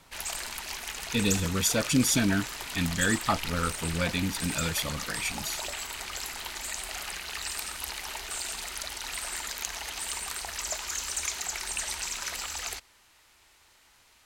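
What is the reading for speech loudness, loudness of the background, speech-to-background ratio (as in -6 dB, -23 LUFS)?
-29.0 LUFS, -33.5 LUFS, 4.5 dB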